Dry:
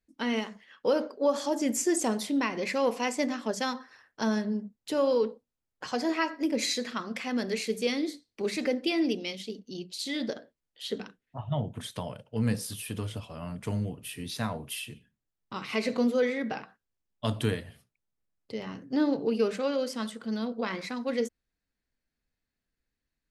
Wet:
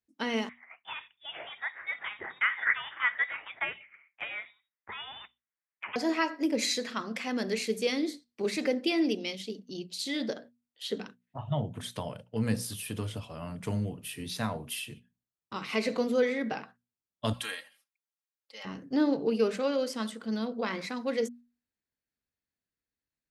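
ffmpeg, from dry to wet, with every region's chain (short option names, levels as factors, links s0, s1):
-filter_complex "[0:a]asettb=1/sr,asplit=3[s0][s1][s2];[s0]atrim=end=0.494[s3];[s1]atrim=start=0.49:end=5.96,asetpts=PTS-STARTPTS,afade=t=in:d=0.004:c=qsin,afade=t=out:st=5.466:d=0.004:c=qsin,highpass=f=2100:t=q:w=3.5,lowpass=f=3400:t=q:w=0.5098,lowpass=f=3400:t=q:w=0.6013,lowpass=f=3400:t=q:w=0.9,lowpass=f=3400:t=q:w=2.563,afreqshift=-4000[s4];[s2]atrim=start=5.956[s5];[s3][s4]acrossfade=d=0.004:c1=hsin:c2=qsin[s6];[s6][s5]acrossfade=d=0.004:c1=qsin:c2=hsin,asettb=1/sr,asplit=3[s7][s8][s9];[s7]atrim=end=17.334[s10];[s8]atrim=start=17.33:end=18.65,asetpts=PTS-STARTPTS,afade=t=in:d=0.004:c=qsin,afade=t=out:st=1.316:d=0.004:c=qsin,highpass=1100,aecho=1:1:3.7:0.83,atrim=end_sample=58212[s11];[s9]atrim=start=18.646[s12];[s10][s11]acrossfade=d=0.004:c1=hsin:c2=qsin[s13];[s13][s12]acrossfade=d=0.004:c1=qsin:c2=hsin,agate=range=0.447:threshold=0.00398:ratio=16:detection=peak,highpass=64,bandreject=f=60:t=h:w=6,bandreject=f=120:t=h:w=6,bandreject=f=180:t=h:w=6,bandreject=f=240:t=h:w=6"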